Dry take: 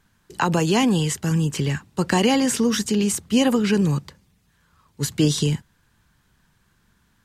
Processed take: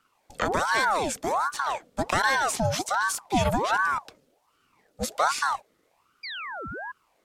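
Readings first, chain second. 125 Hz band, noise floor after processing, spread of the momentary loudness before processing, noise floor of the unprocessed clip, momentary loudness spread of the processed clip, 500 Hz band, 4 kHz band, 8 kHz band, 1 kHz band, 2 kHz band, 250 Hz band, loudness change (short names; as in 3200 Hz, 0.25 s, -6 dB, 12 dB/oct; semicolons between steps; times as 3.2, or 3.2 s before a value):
-13.0 dB, -69 dBFS, 8 LU, -64 dBFS, 12 LU, -5.0 dB, -6.0 dB, -5.5 dB, +4.5 dB, +4.5 dB, -15.0 dB, -5.0 dB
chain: painted sound fall, 6.23–6.92, 300–3700 Hz -30 dBFS; ring modulator with a swept carrier 840 Hz, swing 60%, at 1.3 Hz; gain -2.5 dB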